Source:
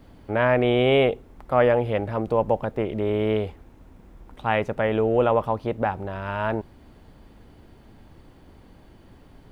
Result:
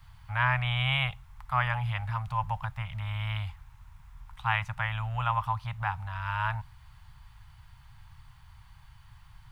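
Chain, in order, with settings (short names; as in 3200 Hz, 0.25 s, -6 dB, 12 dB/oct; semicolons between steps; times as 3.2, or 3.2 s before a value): Chebyshev band-stop 130–960 Hz, order 3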